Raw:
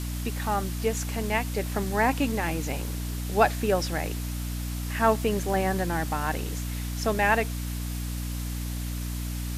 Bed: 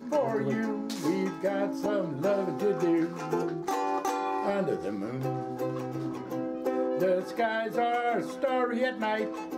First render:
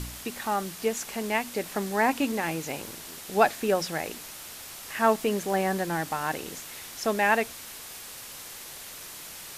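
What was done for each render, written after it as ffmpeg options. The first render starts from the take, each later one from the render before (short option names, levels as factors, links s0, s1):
-af "bandreject=f=60:t=h:w=4,bandreject=f=120:t=h:w=4,bandreject=f=180:t=h:w=4,bandreject=f=240:t=h:w=4,bandreject=f=300:t=h:w=4"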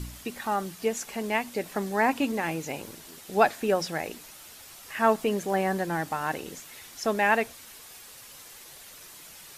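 -af "afftdn=nr=7:nf=-43"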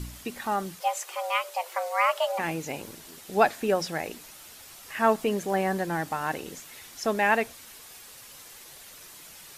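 -filter_complex "[0:a]asplit=3[s0][s1][s2];[s0]afade=t=out:st=0.79:d=0.02[s3];[s1]afreqshift=340,afade=t=in:st=0.79:d=0.02,afade=t=out:st=2.38:d=0.02[s4];[s2]afade=t=in:st=2.38:d=0.02[s5];[s3][s4][s5]amix=inputs=3:normalize=0"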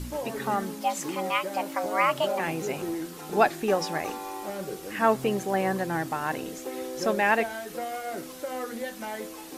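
-filter_complex "[1:a]volume=0.473[s0];[0:a][s0]amix=inputs=2:normalize=0"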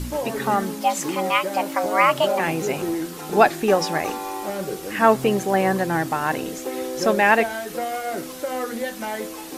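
-af "volume=2.11,alimiter=limit=0.794:level=0:latency=1"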